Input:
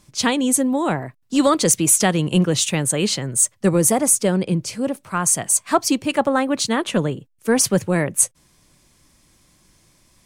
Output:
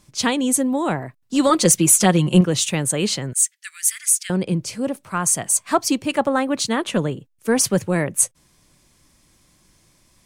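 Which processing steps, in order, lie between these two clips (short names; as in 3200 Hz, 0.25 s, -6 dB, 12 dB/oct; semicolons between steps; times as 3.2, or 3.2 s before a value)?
1.49–2.41 comb 5.6 ms, depth 79%; 3.33–4.3 steep high-pass 1600 Hz 48 dB/oct; gain -1 dB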